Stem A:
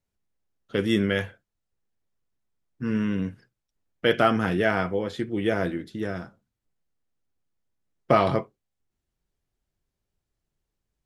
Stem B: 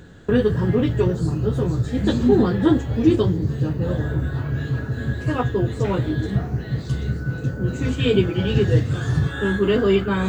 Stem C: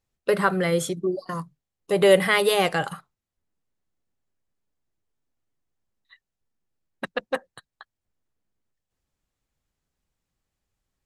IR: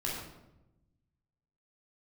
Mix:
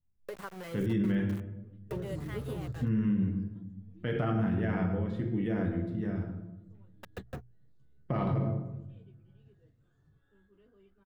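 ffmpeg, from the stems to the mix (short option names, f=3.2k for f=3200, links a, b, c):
-filter_complex "[0:a]bass=f=250:g=12,treble=f=4k:g=-8,volume=-14.5dB,asplit=2[a][b];[b]volume=-3.5dB[c];[1:a]adelay=900,volume=-3.5dB[d];[2:a]aeval=exprs='val(0)*gte(abs(val(0)),0.0708)':c=same,volume=-14.5dB,asplit=2[e][f];[f]apad=whole_len=493263[g];[d][g]sidechaingate=range=-42dB:threshold=-41dB:ratio=16:detection=peak[h];[h][e]amix=inputs=2:normalize=0,bandreject=f=60:t=h:w=6,bandreject=f=120:t=h:w=6,acompressor=threshold=-40dB:ratio=2.5,volume=0dB[i];[3:a]atrim=start_sample=2205[j];[c][j]afir=irnorm=-1:irlink=0[k];[a][i][k]amix=inputs=3:normalize=0,equalizer=f=5.2k:t=o:w=2.4:g=-4.5,alimiter=limit=-21.5dB:level=0:latency=1:release=44"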